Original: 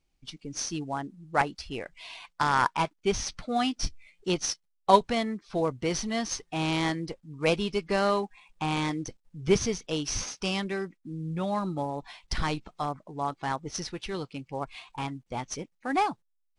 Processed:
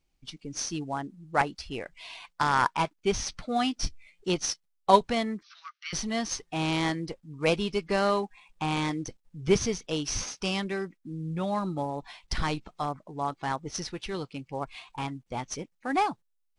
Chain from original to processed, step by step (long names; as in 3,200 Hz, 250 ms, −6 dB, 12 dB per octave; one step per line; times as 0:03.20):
0:05.43–0:05.93: Chebyshev band-pass filter 1,200–5,900 Hz, order 5